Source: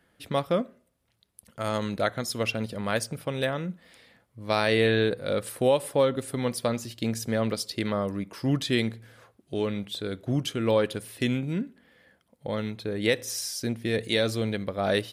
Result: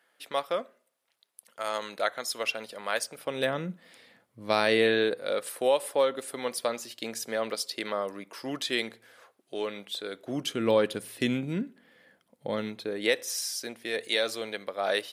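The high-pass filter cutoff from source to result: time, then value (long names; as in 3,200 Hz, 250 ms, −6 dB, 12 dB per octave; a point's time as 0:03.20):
0:03.10 590 Hz
0:03.51 170 Hz
0:04.55 170 Hz
0:05.40 460 Hz
0:10.17 460 Hz
0:10.63 170 Hz
0:12.52 170 Hz
0:13.33 530 Hz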